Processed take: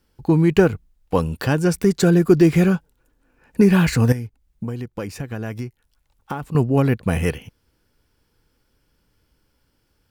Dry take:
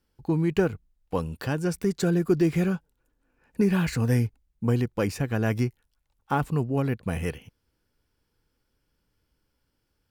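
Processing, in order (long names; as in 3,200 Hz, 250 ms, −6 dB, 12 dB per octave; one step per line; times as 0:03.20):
0:04.12–0:06.55: downward compressor 6 to 1, threshold −35 dBFS, peak gain reduction 15 dB
level +8.5 dB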